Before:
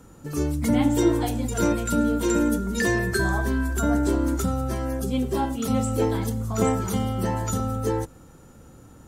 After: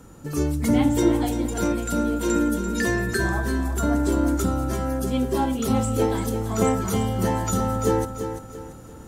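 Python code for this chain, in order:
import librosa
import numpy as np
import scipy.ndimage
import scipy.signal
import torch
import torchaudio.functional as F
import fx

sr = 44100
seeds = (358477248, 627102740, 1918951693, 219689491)

p1 = x + fx.echo_feedback(x, sr, ms=340, feedback_pct=34, wet_db=-9, dry=0)
y = fx.rider(p1, sr, range_db=5, speed_s=2.0)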